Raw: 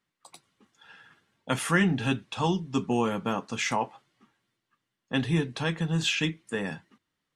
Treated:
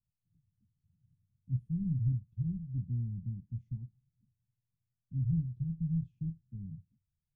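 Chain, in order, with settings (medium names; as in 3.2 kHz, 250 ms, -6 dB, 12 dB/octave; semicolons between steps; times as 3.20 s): inverse Chebyshev low-pass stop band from 530 Hz, stop band 70 dB; trim +7.5 dB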